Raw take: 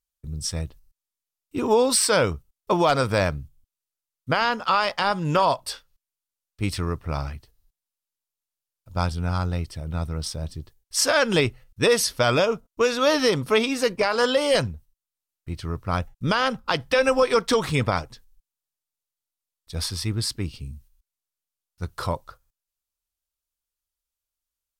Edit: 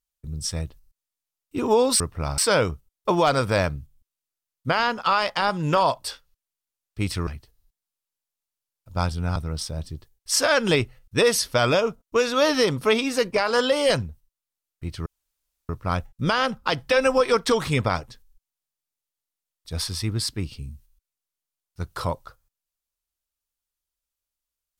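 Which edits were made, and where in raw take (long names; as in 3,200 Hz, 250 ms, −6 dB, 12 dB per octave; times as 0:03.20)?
0:06.89–0:07.27: move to 0:02.00
0:09.36–0:10.01: remove
0:15.71: splice in room tone 0.63 s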